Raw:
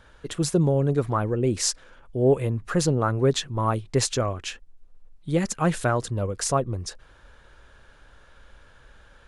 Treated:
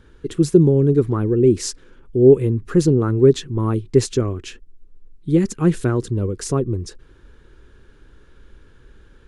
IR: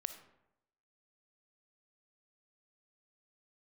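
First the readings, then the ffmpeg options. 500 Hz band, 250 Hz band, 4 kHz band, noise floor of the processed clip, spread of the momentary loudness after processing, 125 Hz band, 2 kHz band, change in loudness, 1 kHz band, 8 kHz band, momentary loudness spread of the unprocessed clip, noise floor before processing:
+8.0 dB, +9.0 dB, −2.5 dB, −50 dBFS, 13 LU, +6.0 dB, −3.0 dB, +6.5 dB, −5.0 dB, −2.5 dB, 13 LU, −54 dBFS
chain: -af "lowshelf=frequency=490:width_type=q:width=3:gain=8,volume=-2.5dB"

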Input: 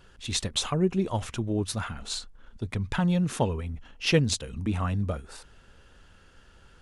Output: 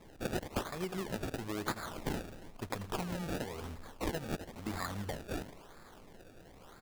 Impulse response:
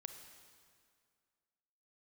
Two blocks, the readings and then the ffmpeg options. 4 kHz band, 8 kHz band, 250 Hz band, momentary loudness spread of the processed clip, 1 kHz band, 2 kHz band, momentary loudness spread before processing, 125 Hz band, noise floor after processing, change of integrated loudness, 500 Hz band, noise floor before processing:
−14.0 dB, −13.5 dB, −11.0 dB, 18 LU, −5.5 dB, −7.0 dB, 11 LU, −14.0 dB, −56 dBFS, −11.0 dB, −8.5 dB, −56 dBFS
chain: -af "equalizer=frequency=83:width=0.39:gain=-10.5,aecho=1:1:82|164|246|328:0.2|0.0898|0.0404|0.0182,acrusher=bits=7:mode=log:mix=0:aa=0.000001,crystalizer=i=4.5:c=0,acompressor=threshold=-33dB:ratio=5,acrusher=samples=29:mix=1:aa=0.000001:lfo=1:lforange=29:lforate=0.99,volume=-1.5dB"

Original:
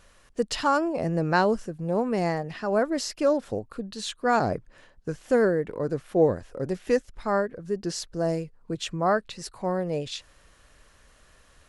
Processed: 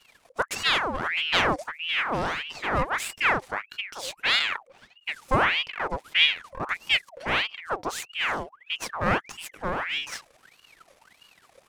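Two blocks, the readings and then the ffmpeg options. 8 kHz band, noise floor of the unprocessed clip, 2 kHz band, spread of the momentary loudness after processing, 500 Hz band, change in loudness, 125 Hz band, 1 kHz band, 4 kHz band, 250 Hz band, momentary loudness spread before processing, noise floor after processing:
0.0 dB, −58 dBFS, +9.5 dB, 12 LU, −9.0 dB, +1.0 dB, −5.5 dB, +0.5 dB, +12.0 dB, −9.0 dB, 11 LU, −62 dBFS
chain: -af "aeval=exprs='if(lt(val(0),0),0.251*val(0),val(0))':channel_layout=same,aeval=exprs='val(0)*sin(2*PI*1700*n/s+1700*0.7/1.6*sin(2*PI*1.6*n/s))':channel_layout=same,volume=5dB"

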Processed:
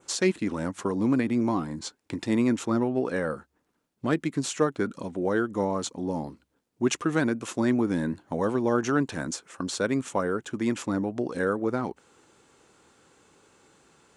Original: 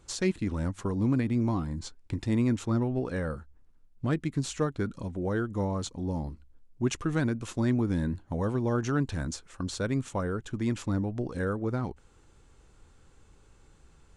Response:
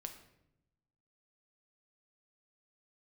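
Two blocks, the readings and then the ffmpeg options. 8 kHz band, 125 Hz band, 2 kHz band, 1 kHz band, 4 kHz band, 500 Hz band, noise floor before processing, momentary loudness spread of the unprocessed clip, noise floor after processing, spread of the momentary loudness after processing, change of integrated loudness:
+5.5 dB, −5.0 dB, +6.0 dB, +6.0 dB, +4.5 dB, +5.5 dB, −59 dBFS, 9 LU, −75 dBFS, 9 LU, +3.0 dB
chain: -af "highpass=240,adynamicequalizer=threshold=0.00126:dfrequency=4100:dqfactor=1.8:tfrequency=4100:tqfactor=1.8:attack=5:release=100:ratio=0.375:range=2:mode=cutabove:tftype=bell,volume=6dB"

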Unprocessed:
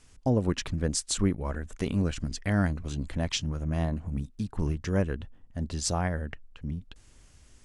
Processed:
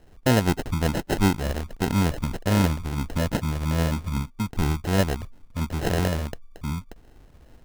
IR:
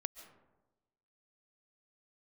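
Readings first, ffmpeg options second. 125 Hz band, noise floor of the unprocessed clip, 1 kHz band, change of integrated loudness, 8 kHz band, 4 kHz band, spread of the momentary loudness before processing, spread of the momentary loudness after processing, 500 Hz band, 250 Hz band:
+5.0 dB, −57 dBFS, +8.5 dB, +5.0 dB, −1.5 dB, +3.0 dB, 11 LU, 10 LU, +5.0 dB, +5.0 dB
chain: -af "acrusher=samples=38:mix=1:aa=0.000001,volume=5dB"

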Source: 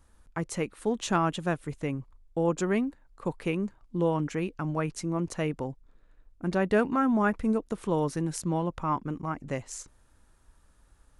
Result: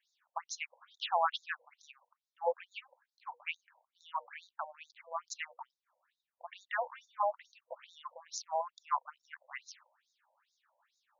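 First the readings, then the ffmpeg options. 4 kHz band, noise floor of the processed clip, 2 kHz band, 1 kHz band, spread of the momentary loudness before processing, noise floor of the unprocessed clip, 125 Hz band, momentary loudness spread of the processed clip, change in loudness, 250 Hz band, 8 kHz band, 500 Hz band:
−1.5 dB, below −85 dBFS, −6.0 dB, −3.5 dB, 11 LU, −62 dBFS, below −40 dB, 18 LU, −9.0 dB, below −40 dB, −8.0 dB, −11.5 dB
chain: -af "bandreject=frequency=60:width_type=h:width=6,bandreject=frequency=120:width_type=h:width=6,bandreject=frequency=180:width_type=h:width=6,bandreject=frequency=240:width_type=h:width=6,bandreject=frequency=300:width_type=h:width=6,bandreject=frequency=360:width_type=h:width=6,bandreject=frequency=420:width_type=h:width=6,bandreject=frequency=480:width_type=h:width=6,afftfilt=real='re*between(b*sr/1024,680*pow(5100/680,0.5+0.5*sin(2*PI*2.3*pts/sr))/1.41,680*pow(5100/680,0.5+0.5*sin(2*PI*2.3*pts/sr))*1.41)':imag='im*between(b*sr/1024,680*pow(5100/680,0.5+0.5*sin(2*PI*2.3*pts/sr))/1.41,680*pow(5100/680,0.5+0.5*sin(2*PI*2.3*pts/sr))*1.41)':win_size=1024:overlap=0.75,volume=1dB"

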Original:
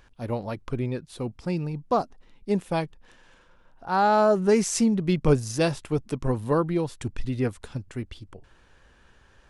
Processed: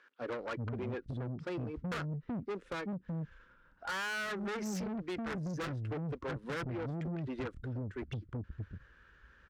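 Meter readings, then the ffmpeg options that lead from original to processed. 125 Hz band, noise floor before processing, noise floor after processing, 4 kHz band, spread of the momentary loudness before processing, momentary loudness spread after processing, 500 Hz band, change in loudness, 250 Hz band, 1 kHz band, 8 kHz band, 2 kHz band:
−9.5 dB, −58 dBFS, −65 dBFS, −8.5 dB, 16 LU, 5 LU, −15.5 dB, −13.5 dB, −12.5 dB, −16.5 dB, −17.5 dB, −4.0 dB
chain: -filter_complex "[0:a]asplit=2[link_01][link_02];[link_02]acrusher=bits=5:mode=log:mix=0:aa=0.000001,volume=-6dB[link_03];[link_01][link_03]amix=inputs=2:normalize=0,acrossover=split=300[link_04][link_05];[link_04]adelay=380[link_06];[link_06][link_05]amix=inputs=2:normalize=0,volume=9dB,asoftclip=hard,volume=-9dB,lowpass=6300,afftdn=noise_reduction=14:noise_floor=-34,highshelf=frequency=3400:gain=-11,aeval=exprs='0.376*(cos(1*acos(clip(val(0)/0.376,-1,1)))-cos(1*PI/2))+0.119*(cos(4*acos(clip(val(0)/0.376,-1,1)))-cos(4*PI/2))+0.133*(cos(5*acos(clip(val(0)/0.376,-1,1)))-cos(5*PI/2))+0.0376*(cos(8*acos(clip(val(0)/0.376,-1,1)))-cos(8*PI/2))':channel_layout=same,acompressor=threshold=-22dB:ratio=20,firequalizer=gain_entry='entry(510,0);entry(720,-10);entry(1400,10);entry(2500,3)':delay=0.05:min_phase=1,asoftclip=type=tanh:threshold=-29.5dB,highpass=43,volume=-4.5dB"

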